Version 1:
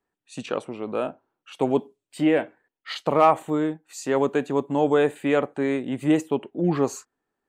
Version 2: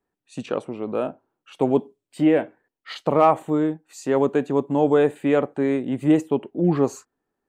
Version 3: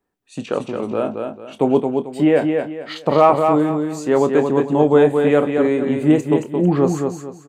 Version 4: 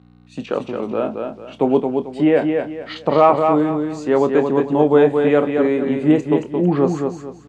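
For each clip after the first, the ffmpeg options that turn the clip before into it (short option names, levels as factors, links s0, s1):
-af "tiltshelf=f=970:g=3.5"
-filter_complex "[0:a]asplit=2[s0][s1];[s1]adelay=27,volume=0.266[s2];[s0][s2]amix=inputs=2:normalize=0,aecho=1:1:222|444|666|888:0.562|0.169|0.0506|0.0152,volume=1.5"
-af "aeval=exprs='val(0)+0.00891*(sin(2*PI*60*n/s)+sin(2*PI*2*60*n/s)/2+sin(2*PI*3*60*n/s)/3+sin(2*PI*4*60*n/s)/4+sin(2*PI*5*60*n/s)/5)':c=same,acrusher=bits=8:mix=0:aa=0.5,highpass=130,lowpass=4900"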